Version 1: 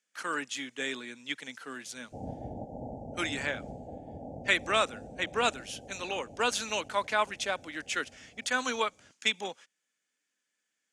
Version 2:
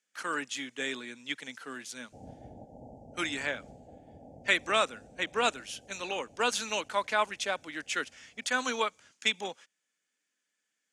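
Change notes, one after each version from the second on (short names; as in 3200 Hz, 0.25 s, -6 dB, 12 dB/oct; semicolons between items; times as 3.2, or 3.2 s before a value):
background -8.5 dB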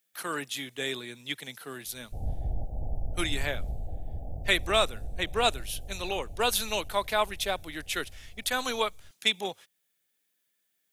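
master: remove speaker cabinet 250–7800 Hz, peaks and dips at 250 Hz +5 dB, 380 Hz -5 dB, 700 Hz -5 dB, 1500 Hz +3 dB, 3800 Hz -7 dB, 6800 Hz +3 dB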